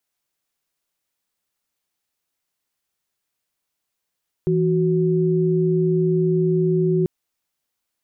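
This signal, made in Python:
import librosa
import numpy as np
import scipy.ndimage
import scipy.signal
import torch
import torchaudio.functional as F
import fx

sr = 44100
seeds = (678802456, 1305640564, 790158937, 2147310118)

y = fx.chord(sr, length_s=2.59, notes=(52, 66), wave='sine', level_db=-18.5)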